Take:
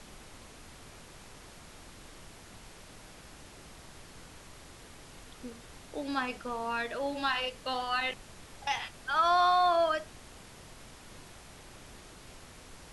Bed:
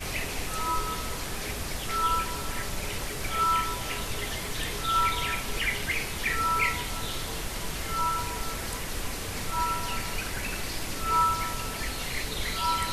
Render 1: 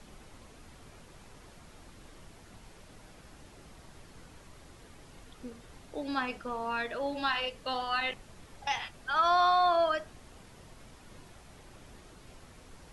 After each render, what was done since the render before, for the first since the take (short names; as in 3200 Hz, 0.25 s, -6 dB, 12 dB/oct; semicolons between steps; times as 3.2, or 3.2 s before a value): denoiser 6 dB, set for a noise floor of -52 dBFS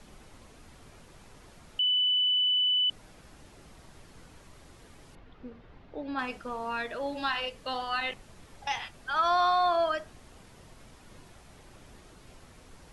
1.79–2.9 bleep 2990 Hz -22.5 dBFS; 5.15–6.19 air absorption 310 m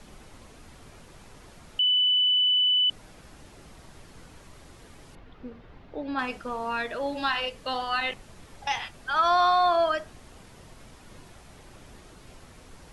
gain +3.5 dB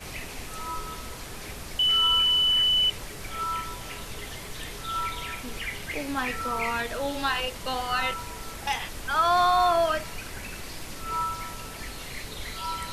add bed -5.5 dB